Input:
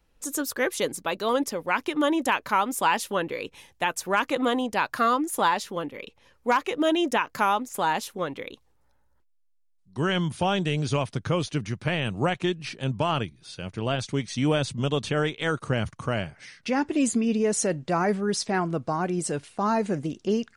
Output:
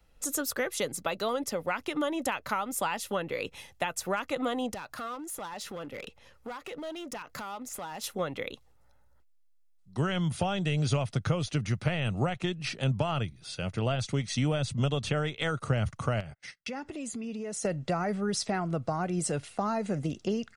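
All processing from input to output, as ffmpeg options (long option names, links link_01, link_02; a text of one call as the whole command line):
ffmpeg -i in.wav -filter_complex "[0:a]asettb=1/sr,asplit=3[link_01][link_02][link_03];[link_01]atrim=end=4.744[link_04];[link_02]atrim=start=4.74:end=8.04,asetpts=PTS-STARTPTS,afade=type=in:duration=0.004:curve=qsin,afade=type=out:start_time=3.296:duration=0.004:curve=qsin,acompressor=threshold=-35dB:ratio=10:attack=3.2:release=140:knee=1:detection=peak,volume=35.5dB,asoftclip=hard,volume=-35.5dB[link_05];[link_03]atrim=start=8.036[link_06];[link_04][link_05]acrossfade=duration=0.004:curve1=hsin:curve2=qsin[link_07];[link_07][link_06]acrossfade=duration=0.004:curve1=qsin:curve2=hsin,asettb=1/sr,asplit=3[link_08][link_09][link_10];[link_08]atrim=end=16.204[link_11];[link_09]atrim=start=16.2:end=17.65,asetpts=PTS-STARTPTS,afade=type=in:duration=0.004:curve=qsin,afade=type=out:start_time=1.446:duration=0.004:curve=qsin,agate=range=-36dB:threshold=-46dB:ratio=16:release=100:detection=peak,acompressor=threshold=-36dB:ratio=5:attack=3.2:release=140:knee=1:detection=peak[link_12];[link_10]atrim=start=17.646[link_13];[link_11][link_12]acrossfade=duration=0.004:curve1=hsin:curve2=qsin[link_14];[link_14][link_13]acrossfade=duration=0.004:curve1=qsin:curve2=hsin,aecho=1:1:1.5:0.32,acrossover=split=130[link_15][link_16];[link_16]acompressor=threshold=-29dB:ratio=6[link_17];[link_15][link_17]amix=inputs=2:normalize=0,volume=1.5dB" out.wav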